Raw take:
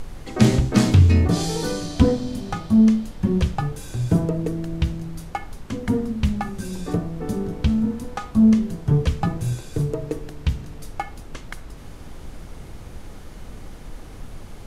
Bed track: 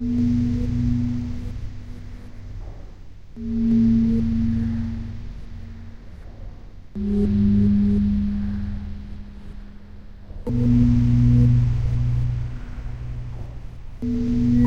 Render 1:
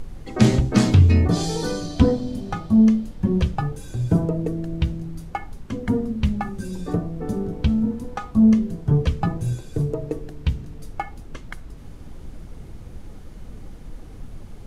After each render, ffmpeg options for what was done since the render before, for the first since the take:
-af "afftdn=nr=7:nf=-39"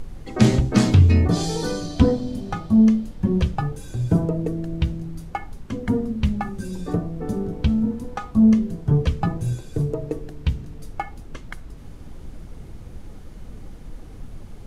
-af anull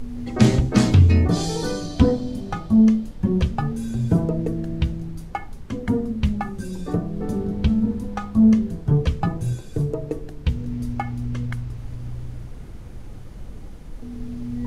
-filter_complex "[1:a]volume=-12dB[a];[0:a][a]amix=inputs=2:normalize=0"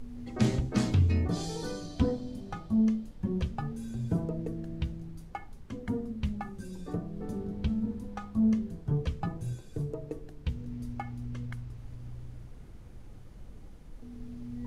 -af "volume=-11dB"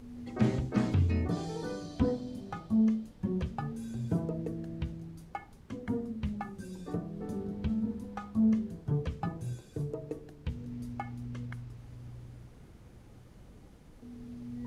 -filter_complex "[0:a]acrossover=split=2500[a][b];[b]acompressor=threshold=-52dB:ratio=4:attack=1:release=60[c];[a][c]amix=inputs=2:normalize=0,highpass=f=96:p=1"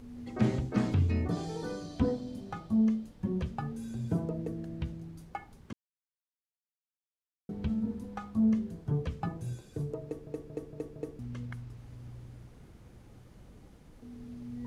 -filter_complex "[0:a]asplit=8[a][b][c][d][e][f][g][h];[a]atrim=end=5.73,asetpts=PTS-STARTPTS,afade=t=out:st=5.726:d=0.004:c=hsin[i];[b]atrim=start=5.73:end=7.49,asetpts=PTS-STARTPTS,volume=0[j];[c]atrim=start=7.49:end=10.272,asetpts=PTS-STARTPTS,afade=t=in:d=0.004:c=hsin[k];[d]atrim=start=10.038:end=10.272[l];[e]atrim=start=10.038:end=10.272[m];[f]atrim=start=10.038:end=10.272[n];[g]atrim=start=10.038:end=10.272[o];[h]atrim=start=11.188[p];[i][j][k]concat=n=3:v=0:a=1[q];[q][l]acrossfade=d=0.004:c1=hsin:c2=hsin[r];[r][m]acrossfade=d=0.004:c1=hsin:c2=hsin[s];[s][n]acrossfade=d=0.004:c1=hsin:c2=hsin[t];[t][o]acrossfade=d=0.004:c1=hsin:c2=hsin[u];[u][p]acrossfade=d=0.004:c1=hsin:c2=hsin"

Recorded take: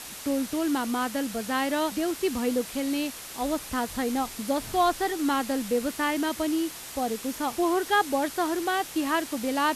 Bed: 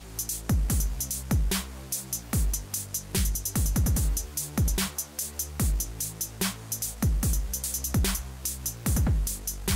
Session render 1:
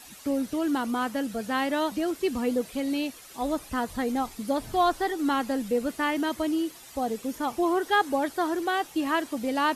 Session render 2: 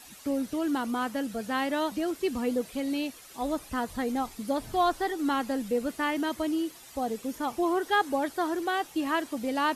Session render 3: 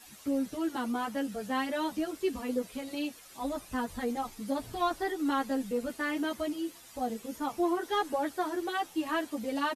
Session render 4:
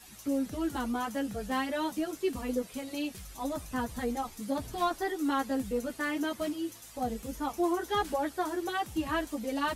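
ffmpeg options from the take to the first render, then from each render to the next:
-af "afftdn=nr=11:nf=-41"
-af "volume=-2dB"
-filter_complex "[0:a]asoftclip=type=tanh:threshold=-15dB,asplit=2[a][b];[b]adelay=10.4,afreqshift=-0.97[c];[a][c]amix=inputs=2:normalize=1"
-filter_complex "[1:a]volume=-21dB[a];[0:a][a]amix=inputs=2:normalize=0"

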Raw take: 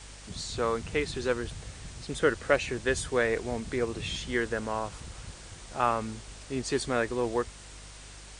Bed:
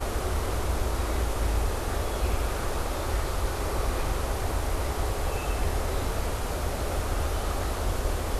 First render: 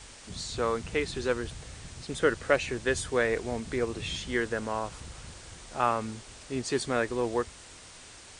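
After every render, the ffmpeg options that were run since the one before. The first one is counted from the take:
-af "bandreject=f=50:t=h:w=4,bandreject=f=100:t=h:w=4,bandreject=f=150:t=h:w=4,bandreject=f=200:t=h:w=4"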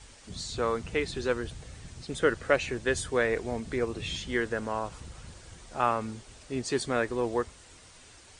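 -af "afftdn=nr=6:nf=-49"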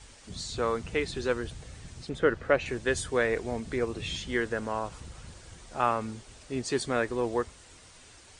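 -filter_complex "[0:a]asettb=1/sr,asplit=3[a][b][c];[a]atrim=end=2.094[d];[b]atrim=start=2.09:end=2.66,asetpts=PTS-STARTPTS,afade=t=in:d=0.004:c=qsin,afade=t=out:st=0.566:d=0.004:c=qsin,aemphasis=mode=reproduction:type=75fm[e];[c]atrim=start=2.656[f];[d][e]acrossfade=d=0.004:c1=hsin:c2=qsin[g];[g][f]acrossfade=d=0.004:c1=qsin:c2=hsin"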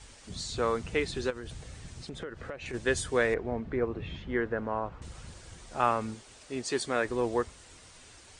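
-filter_complex "[0:a]asplit=3[a][b][c];[a]afade=t=out:st=1.29:d=0.02[d];[b]acompressor=threshold=-35dB:ratio=12:attack=3.2:release=140:knee=1:detection=peak,afade=t=in:st=1.29:d=0.02,afade=t=out:st=2.73:d=0.02[e];[c]afade=t=in:st=2.73:d=0.02[f];[d][e][f]amix=inputs=3:normalize=0,asettb=1/sr,asplit=3[g][h][i];[g]atrim=end=3.344[j];[h]atrim=start=3.34:end=5.02,asetpts=PTS-STARTPTS,afade=t=in:d=0.004:c=qsin,afade=t=out:st=1.676:d=0.004:c=qsin,lowpass=1.7k[k];[i]atrim=start=5.016[l];[j][k]acrossfade=d=0.004:c1=hsin:c2=qsin[m];[m][l]acrossfade=d=0.004:c1=qsin:c2=hsin,asettb=1/sr,asplit=3[n][o][p];[n]atrim=end=6.144[q];[o]atrim=start=6.14:end=7.05,asetpts=PTS-STARTPTS,afade=t=in:d=0.004:c=qsin,afade=t=out:st=0.906:d=0.004:c=qsin,lowshelf=f=180:g=-10.5[r];[p]atrim=start=7.046[s];[q][r]acrossfade=d=0.004:c1=hsin:c2=qsin[t];[t][s]acrossfade=d=0.004:c1=qsin:c2=hsin"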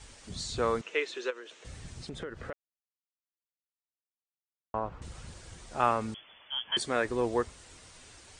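-filter_complex "[0:a]asettb=1/sr,asplit=3[a][b][c];[a]atrim=end=0.814[d];[b]atrim=start=0.81:end=1.65,asetpts=PTS-STARTPTS,afade=t=in:d=0.004:c=qsin,afade=t=out:st=0.836:d=0.004:c=qsin,highpass=f=390:w=0.5412,highpass=f=390:w=1.3066,equalizer=f=760:t=q:w=4:g=-9,equalizer=f=2.7k:t=q:w=4:g=4,equalizer=f=4.7k:t=q:w=4:g=-8,lowpass=f=6.8k:w=0.5412,lowpass=f=6.8k:w=1.3066[e];[c]atrim=start=1.646[f];[d][e]acrossfade=d=0.004:c1=hsin:c2=qsin[g];[g][f]acrossfade=d=0.004:c1=qsin:c2=hsin,asettb=1/sr,asplit=3[h][i][j];[h]atrim=end=6.144[k];[i]atrim=start=6.14:end=6.77,asetpts=PTS-STARTPTS,afade=t=in:d=0.004:c=qsin,afade=t=out:st=0.626:d=0.004:c=qsin,lowpass=f=3k:t=q:w=0.5098,lowpass=f=3k:t=q:w=0.6013,lowpass=f=3k:t=q:w=0.9,lowpass=f=3k:t=q:w=2.563,afreqshift=-3500[l];[j]atrim=start=6.766[m];[k][l]acrossfade=d=0.004:c1=hsin:c2=qsin[n];[n][m]acrossfade=d=0.004:c1=qsin:c2=hsin,asplit=3[o][p][q];[o]atrim=end=2.53,asetpts=PTS-STARTPTS,afade=t=out:st=2.526:d=0.004:c=hsin[r];[p]atrim=start=2.53:end=4.74,asetpts=PTS-STARTPTS,volume=0[s];[q]atrim=start=4.74,asetpts=PTS-STARTPTS,afade=t=in:d=0.004:c=hsin[t];[r][s][t]concat=n=3:v=0:a=1"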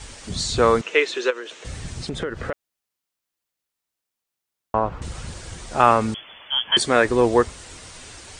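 -af "volume=12dB,alimiter=limit=-1dB:level=0:latency=1"

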